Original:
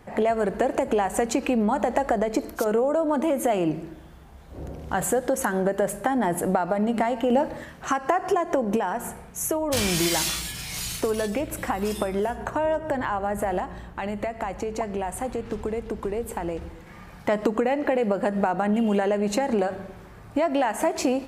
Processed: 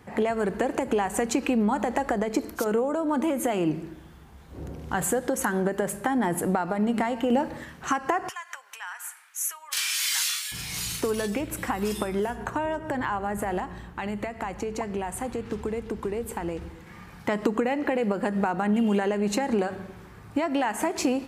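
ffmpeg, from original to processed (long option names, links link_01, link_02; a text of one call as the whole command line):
ffmpeg -i in.wav -filter_complex "[0:a]asettb=1/sr,asplit=3[link_01][link_02][link_03];[link_01]atrim=end=8.294[link_04];[link_02]atrim=start=8.29:end=10.52,asetpts=PTS-STARTPTS,afade=type=in:duration=0.004:curve=qsin,afade=type=out:start_time=2.226:duration=0.004:curve=qsin,highpass=frequency=1300:width=0.5412,highpass=frequency=1300:width=1.3066[link_05];[link_03]atrim=start=10.516[link_06];[link_04][link_05]acrossfade=duration=0.004:curve1=hsin:curve2=qsin[link_07];[link_07][link_06]acrossfade=duration=0.004:curve1=qsin:curve2=hsin,highpass=55,equalizer=frequency=620:width=2.5:gain=-7" out.wav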